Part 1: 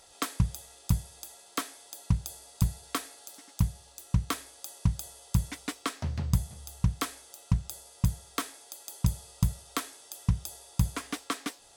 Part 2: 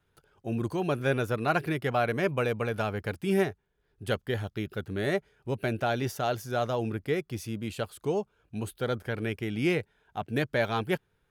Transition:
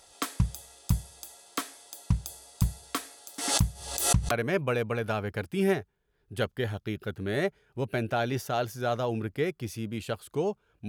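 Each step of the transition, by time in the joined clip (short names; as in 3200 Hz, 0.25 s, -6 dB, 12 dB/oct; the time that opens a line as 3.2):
part 1
3.38–4.31 backwards sustainer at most 68 dB/s
4.31 switch to part 2 from 2.01 s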